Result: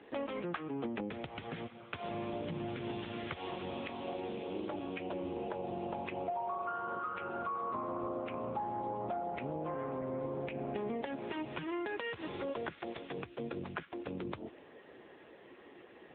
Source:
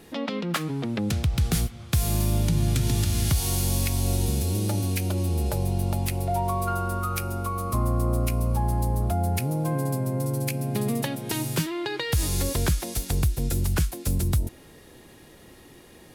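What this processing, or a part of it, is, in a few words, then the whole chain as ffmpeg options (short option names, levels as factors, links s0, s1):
voicemail: -filter_complex "[0:a]asplit=3[s0][s1][s2];[s0]afade=t=out:st=3.92:d=0.02[s3];[s1]highpass=f=210:p=1,afade=t=in:st=3.92:d=0.02,afade=t=out:st=5.2:d=0.02[s4];[s2]afade=t=in:st=5.2:d=0.02[s5];[s3][s4][s5]amix=inputs=3:normalize=0,highpass=350,lowpass=2700,acompressor=threshold=0.02:ratio=10,volume=1.12" -ar 8000 -c:a libopencore_amrnb -b:a 6700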